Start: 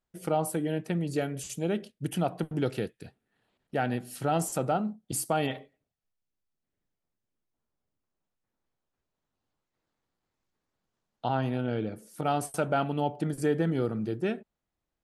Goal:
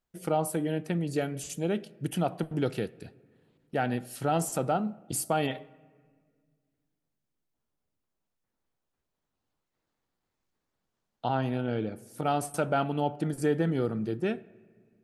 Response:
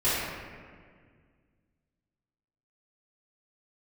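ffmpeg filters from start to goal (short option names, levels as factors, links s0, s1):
-filter_complex "[0:a]asplit=2[s0][s1];[1:a]atrim=start_sample=2205[s2];[s1][s2]afir=irnorm=-1:irlink=0,volume=0.0178[s3];[s0][s3]amix=inputs=2:normalize=0"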